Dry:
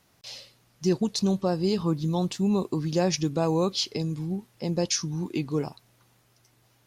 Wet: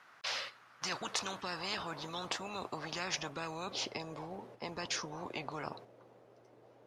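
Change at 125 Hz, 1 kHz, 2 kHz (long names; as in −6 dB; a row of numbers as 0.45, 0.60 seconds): −21.5, −5.0, +2.5 decibels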